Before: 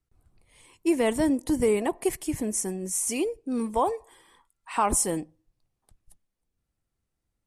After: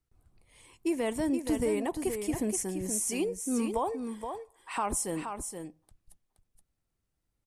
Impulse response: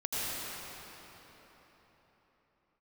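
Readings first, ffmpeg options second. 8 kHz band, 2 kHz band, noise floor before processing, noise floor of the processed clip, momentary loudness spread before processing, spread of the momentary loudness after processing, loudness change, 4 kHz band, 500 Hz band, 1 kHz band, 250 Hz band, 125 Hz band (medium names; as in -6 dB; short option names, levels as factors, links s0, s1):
-4.5 dB, -4.5 dB, -82 dBFS, -82 dBFS, 7 LU, 10 LU, -5.0 dB, -4.5 dB, -5.0 dB, -6.0 dB, -3.5 dB, -3.5 dB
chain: -filter_complex "[0:a]alimiter=limit=0.106:level=0:latency=1:release=344,asplit=2[s0][s1];[s1]aecho=0:1:473:0.447[s2];[s0][s2]amix=inputs=2:normalize=0,volume=0.841"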